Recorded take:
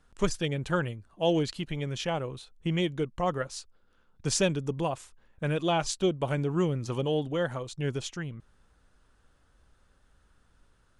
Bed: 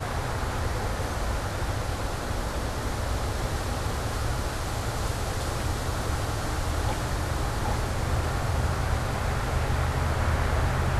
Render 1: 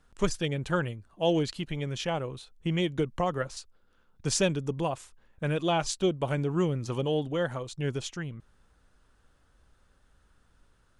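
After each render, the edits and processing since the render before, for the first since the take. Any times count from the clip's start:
0:02.98–0:03.57: multiband upward and downward compressor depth 100%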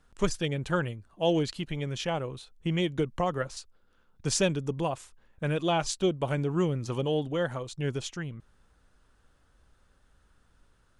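no processing that can be heard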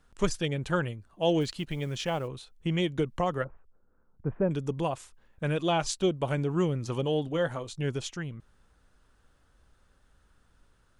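0:01.41–0:02.28: floating-point word with a short mantissa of 4 bits
0:03.44–0:04.51: Gaussian smoothing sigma 6.6 samples
0:07.26–0:07.83: double-tracking delay 19 ms −11 dB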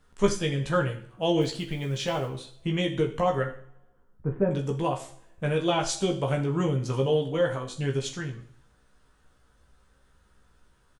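double-tracking delay 15 ms −4 dB
coupled-rooms reverb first 0.53 s, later 1.6 s, from −25 dB, DRR 5 dB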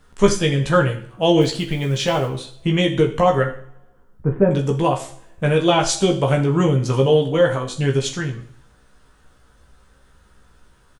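level +9 dB
brickwall limiter −1 dBFS, peak gain reduction 1.5 dB

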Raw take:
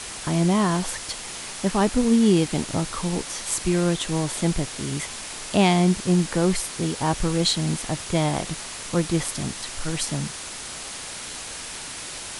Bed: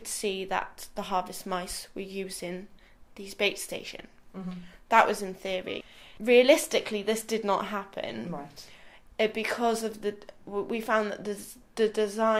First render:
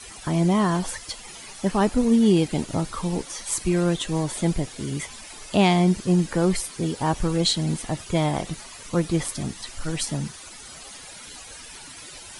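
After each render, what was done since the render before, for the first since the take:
broadband denoise 13 dB, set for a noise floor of −36 dBFS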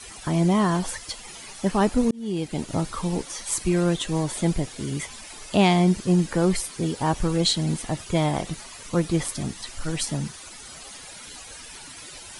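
0:02.11–0:02.78: fade in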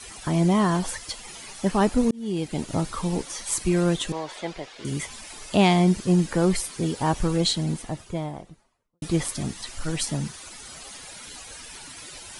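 0:04.12–0:04.85: three-way crossover with the lows and the highs turned down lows −19 dB, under 420 Hz, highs −22 dB, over 5,200 Hz
0:07.21–0:09.02: fade out and dull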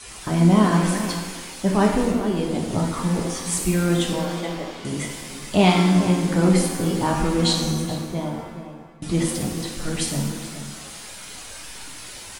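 slap from a distant wall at 73 metres, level −11 dB
reverb with rising layers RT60 1 s, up +7 semitones, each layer −8 dB, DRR 0.5 dB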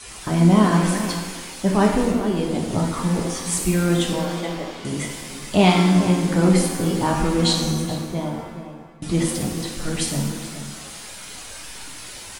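level +1 dB

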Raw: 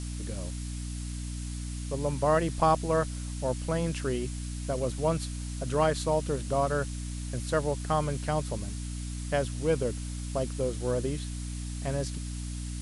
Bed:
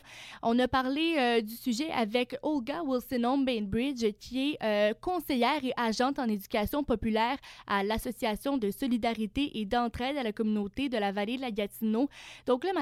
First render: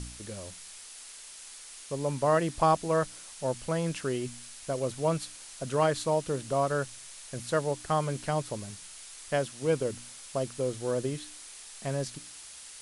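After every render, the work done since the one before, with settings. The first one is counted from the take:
hum removal 60 Hz, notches 5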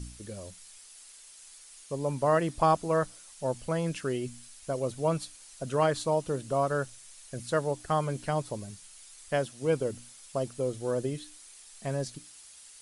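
broadband denoise 8 dB, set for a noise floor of −47 dBFS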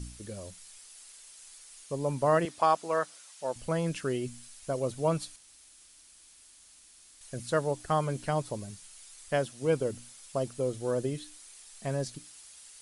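0:02.45–0:03.56: meter weighting curve A
0:05.36–0:07.21: fill with room tone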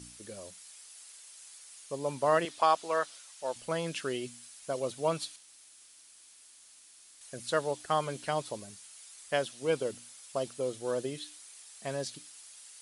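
high-pass filter 390 Hz 6 dB per octave
dynamic equaliser 3,500 Hz, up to +6 dB, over −54 dBFS, Q 1.4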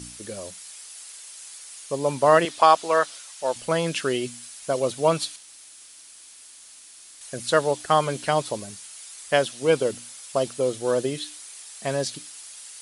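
level +9.5 dB

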